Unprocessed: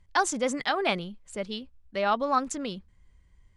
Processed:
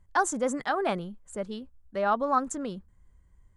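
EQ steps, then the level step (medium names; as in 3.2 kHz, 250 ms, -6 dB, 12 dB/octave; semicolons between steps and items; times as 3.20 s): high-order bell 3.4 kHz -10 dB; 0.0 dB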